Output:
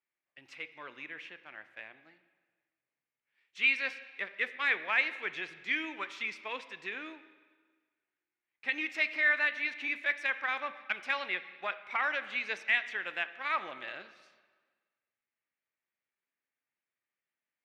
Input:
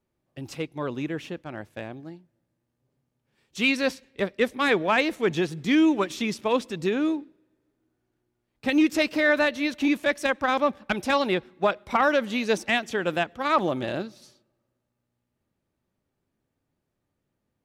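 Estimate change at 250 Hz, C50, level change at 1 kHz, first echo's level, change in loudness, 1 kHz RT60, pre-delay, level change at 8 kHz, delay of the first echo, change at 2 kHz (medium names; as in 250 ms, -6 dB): -25.0 dB, 13.5 dB, -11.5 dB, no echo, -7.0 dB, 1.5 s, 5 ms, under -15 dB, no echo, -2.5 dB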